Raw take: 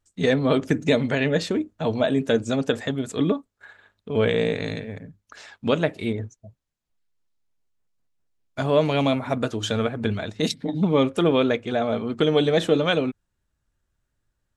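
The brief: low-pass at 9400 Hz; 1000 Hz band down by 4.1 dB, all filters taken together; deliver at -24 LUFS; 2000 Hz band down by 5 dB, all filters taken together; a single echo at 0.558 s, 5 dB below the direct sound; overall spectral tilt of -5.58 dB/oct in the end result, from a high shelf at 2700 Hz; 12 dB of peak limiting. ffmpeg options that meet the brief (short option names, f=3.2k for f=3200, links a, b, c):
-af "lowpass=9.4k,equalizer=f=1k:t=o:g=-5,equalizer=f=2k:t=o:g=-8,highshelf=f=2.7k:g=7,alimiter=limit=-18.5dB:level=0:latency=1,aecho=1:1:558:0.562,volume=4.5dB"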